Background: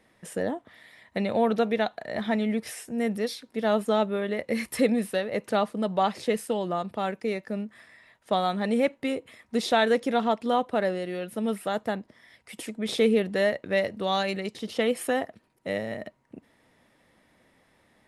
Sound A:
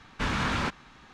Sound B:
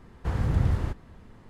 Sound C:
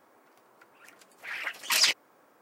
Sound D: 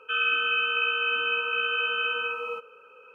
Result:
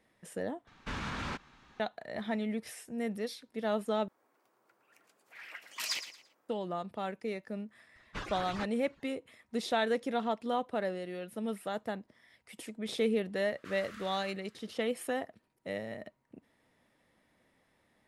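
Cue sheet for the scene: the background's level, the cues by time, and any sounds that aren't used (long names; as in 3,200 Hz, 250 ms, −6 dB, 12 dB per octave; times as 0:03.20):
background −8 dB
0:00.67: overwrite with A −7.5 dB + brickwall limiter −21 dBFS
0:04.08: overwrite with C −12.5 dB + repeating echo 113 ms, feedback 30%, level −11.5 dB
0:07.95: mix in A −8.5 dB + harmonic-percussive split with one part muted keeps percussive
0:13.40: mix in B −4 dB + elliptic high-pass filter 1,200 Hz
not used: D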